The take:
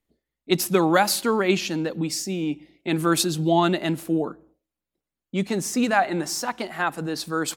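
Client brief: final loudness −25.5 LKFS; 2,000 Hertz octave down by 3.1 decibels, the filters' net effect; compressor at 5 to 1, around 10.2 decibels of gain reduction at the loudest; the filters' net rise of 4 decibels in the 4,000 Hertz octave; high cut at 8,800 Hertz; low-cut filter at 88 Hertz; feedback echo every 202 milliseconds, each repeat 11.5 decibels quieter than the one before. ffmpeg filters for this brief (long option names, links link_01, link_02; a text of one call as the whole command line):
ffmpeg -i in.wav -af "highpass=88,lowpass=8800,equalizer=frequency=2000:width_type=o:gain=-6,equalizer=frequency=4000:width_type=o:gain=6.5,acompressor=threshold=-26dB:ratio=5,aecho=1:1:202|404|606:0.266|0.0718|0.0194,volume=4dB" out.wav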